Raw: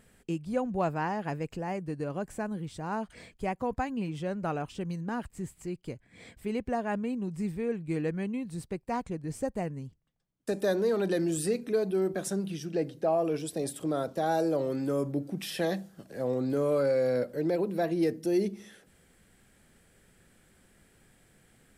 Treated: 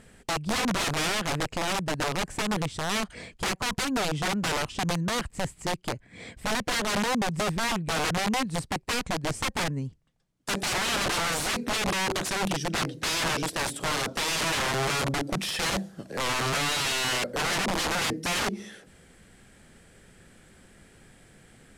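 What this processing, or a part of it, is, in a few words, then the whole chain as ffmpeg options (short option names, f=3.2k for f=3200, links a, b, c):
overflowing digital effects unit: -af "aeval=exprs='(mod(31.6*val(0)+1,2)-1)/31.6':c=same,lowpass=9.5k,volume=8dB"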